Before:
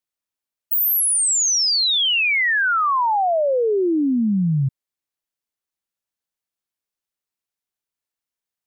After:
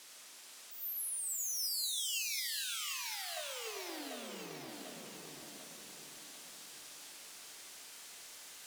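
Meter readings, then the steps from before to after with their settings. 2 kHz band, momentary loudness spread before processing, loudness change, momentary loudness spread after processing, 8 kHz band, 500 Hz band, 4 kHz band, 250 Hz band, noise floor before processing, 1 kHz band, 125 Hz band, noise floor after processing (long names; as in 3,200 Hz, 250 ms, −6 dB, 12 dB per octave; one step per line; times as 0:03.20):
−24.0 dB, 5 LU, −22.5 dB, 15 LU, −17.0 dB, −27.0 dB, −18.0 dB, −30.0 dB, below −85 dBFS, −29.0 dB, −37.0 dB, −54 dBFS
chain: converter with a step at zero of −41 dBFS
brickwall limiter −20.5 dBFS, peak gain reduction 5 dB
low-pass filter 9,300 Hz 12 dB per octave
high-shelf EQ 2,300 Hz +6 dB
tube saturation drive 42 dB, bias 0.5
reversed playback
upward compression, threshold −46 dBFS
reversed playback
reverb whose tail is shaped and stops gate 130 ms rising, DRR 5 dB
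dynamic equaliser 1,100 Hz, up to −5 dB, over −53 dBFS, Q 0.74
high-pass filter 270 Hz 12 dB per octave
noise gate −41 dBFS, range −13 dB
on a send: feedback delay with all-pass diffusion 490 ms, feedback 49%, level −5.5 dB
on the sum: feedback echo at a low word length 743 ms, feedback 55%, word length 11 bits, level −3.5 dB
level +7 dB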